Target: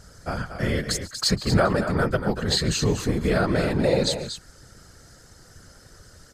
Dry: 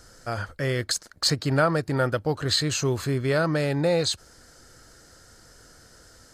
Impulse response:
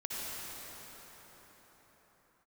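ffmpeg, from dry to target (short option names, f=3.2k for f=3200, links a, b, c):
-af "lowshelf=f=76:g=9.5,aecho=1:1:142|236:0.112|0.355,afftfilt=real='hypot(re,im)*cos(2*PI*random(0))':imag='hypot(re,im)*sin(2*PI*random(1))':win_size=512:overlap=0.75,volume=6dB"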